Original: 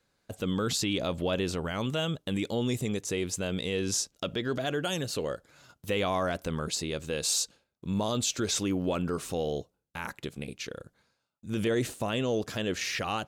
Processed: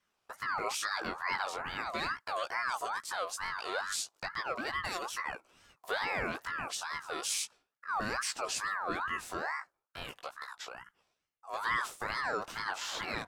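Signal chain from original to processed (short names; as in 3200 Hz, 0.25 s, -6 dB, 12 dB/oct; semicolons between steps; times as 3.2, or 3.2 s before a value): 1.81–2.69 dynamic EQ 1400 Hz, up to +4 dB, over -42 dBFS, Q 0.76; chorus 0.36 Hz, delay 15 ms, depth 5.1 ms; ring modulator with a swept carrier 1200 Hz, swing 30%, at 2.3 Hz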